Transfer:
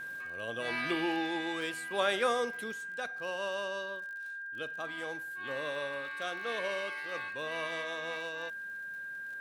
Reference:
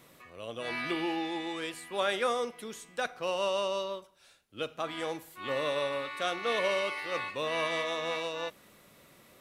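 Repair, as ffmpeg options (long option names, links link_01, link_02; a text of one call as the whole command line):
ffmpeg -i in.wav -af "adeclick=threshold=4,bandreject=frequency=1600:width=30,asetnsamples=nb_out_samples=441:pad=0,asendcmd='2.72 volume volume 6.5dB',volume=0dB" out.wav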